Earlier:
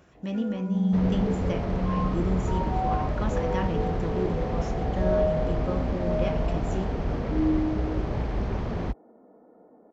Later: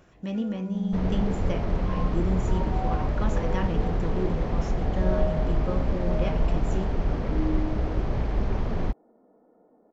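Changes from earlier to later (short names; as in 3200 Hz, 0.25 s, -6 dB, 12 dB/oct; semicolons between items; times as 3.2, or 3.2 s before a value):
first sound -5.5 dB; master: remove HPF 45 Hz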